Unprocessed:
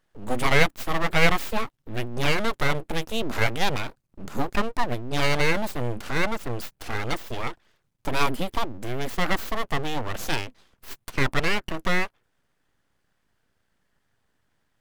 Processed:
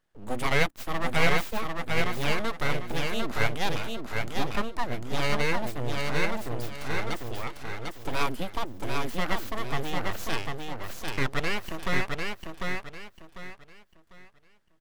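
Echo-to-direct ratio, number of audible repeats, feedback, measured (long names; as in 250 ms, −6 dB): −3.0 dB, 4, 30%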